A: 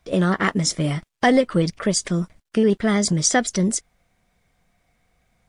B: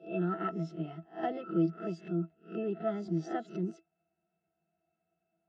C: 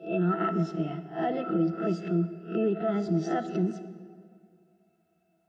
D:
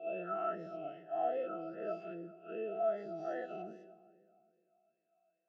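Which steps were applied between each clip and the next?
peak hold with a rise ahead of every peak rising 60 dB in 0.31 s; Chebyshev band-pass filter 300–4,100 Hz, order 2; resonances in every octave E, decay 0.12 s; level −1 dB
brickwall limiter −27.5 dBFS, peak gain reduction 8 dB; on a send at −10.5 dB: convolution reverb RT60 2.2 s, pre-delay 15 ms; on the sum: level +8.5 dB
every bin's largest magnitude spread in time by 120 ms; formant filter swept between two vowels a-e 2.5 Hz; level −3.5 dB

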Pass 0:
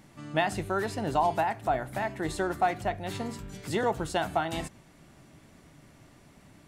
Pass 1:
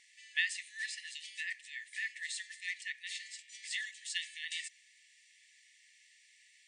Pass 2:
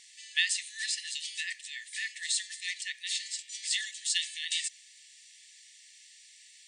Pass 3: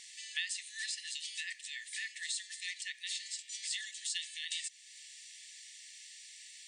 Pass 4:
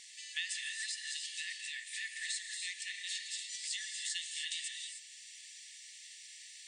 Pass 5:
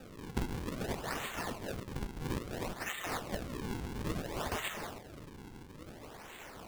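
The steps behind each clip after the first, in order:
brick-wall band-pass 1,700–9,500 Hz; level +1 dB
graphic EQ with 10 bands 2,000 Hz −8 dB, 4,000 Hz +4 dB, 8,000 Hz +4 dB; level +8 dB
downward compressor 2 to 1, threshold −47 dBFS, peak gain reduction 13.5 dB; level +3 dB
reverb whose tail is shaped and stops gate 330 ms rising, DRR 3 dB; level −1.5 dB
sample-and-hold swept by an LFO 41×, swing 160% 0.59 Hz; level +3 dB

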